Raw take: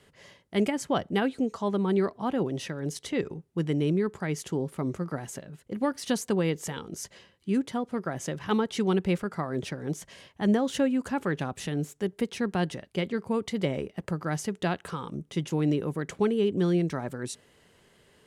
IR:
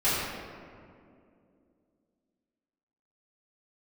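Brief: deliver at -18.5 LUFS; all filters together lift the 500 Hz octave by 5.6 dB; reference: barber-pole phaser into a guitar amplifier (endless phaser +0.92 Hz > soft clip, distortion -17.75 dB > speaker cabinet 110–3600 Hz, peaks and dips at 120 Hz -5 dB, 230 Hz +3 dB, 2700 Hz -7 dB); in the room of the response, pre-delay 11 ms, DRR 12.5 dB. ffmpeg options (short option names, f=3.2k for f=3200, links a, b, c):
-filter_complex "[0:a]equalizer=f=500:t=o:g=7,asplit=2[a][b];[1:a]atrim=start_sample=2205,adelay=11[c];[b][c]afir=irnorm=-1:irlink=0,volume=-26.5dB[d];[a][d]amix=inputs=2:normalize=0,asplit=2[e][f];[f]afreqshift=0.92[g];[e][g]amix=inputs=2:normalize=1,asoftclip=threshold=-18dB,highpass=110,equalizer=f=120:t=q:w=4:g=-5,equalizer=f=230:t=q:w=4:g=3,equalizer=f=2.7k:t=q:w=4:g=-7,lowpass=f=3.6k:w=0.5412,lowpass=f=3.6k:w=1.3066,volume=11.5dB"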